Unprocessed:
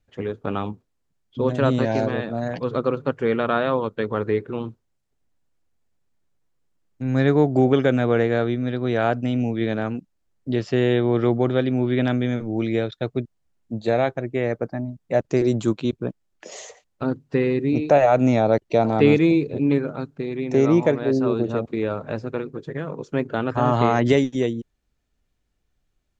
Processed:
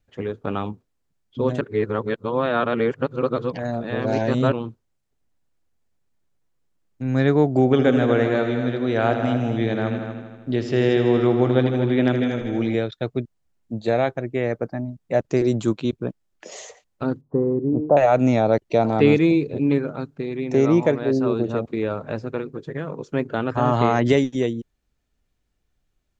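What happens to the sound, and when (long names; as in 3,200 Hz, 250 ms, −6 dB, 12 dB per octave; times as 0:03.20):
0:01.61–0:04.52: reverse
0:07.63–0:12.75: echo machine with several playback heads 79 ms, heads all three, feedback 44%, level −11 dB
0:17.21–0:17.97: elliptic low-pass filter 1,100 Hz, stop band 80 dB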